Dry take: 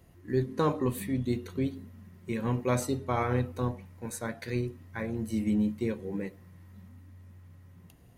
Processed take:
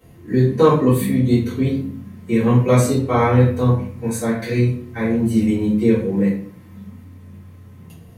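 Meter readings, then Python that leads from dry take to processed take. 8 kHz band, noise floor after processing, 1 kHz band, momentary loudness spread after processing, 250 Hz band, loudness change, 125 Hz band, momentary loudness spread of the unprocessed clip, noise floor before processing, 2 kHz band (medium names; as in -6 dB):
+10.5 dB, -43 dBFS, +11.5 dB, 9 LU, +14.0 dB, +14.0 dB, +15.5 dB, 11 LU, -55 dBFS, +11.0 dB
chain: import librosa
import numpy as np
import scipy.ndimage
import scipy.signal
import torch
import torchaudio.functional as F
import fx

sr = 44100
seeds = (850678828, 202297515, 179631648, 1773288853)

y = scipy.signal.sosfilt(scipy.signal.butter(2, 63.0, 'highpass', fs=sr, output='sos'), x)
y = fx.room_shoebox(y, sr, seeds[0], volume_m3=44.0, walls='mixed', distance_m=2.1)
y = y * librosa.db_to_amplitude(1.0)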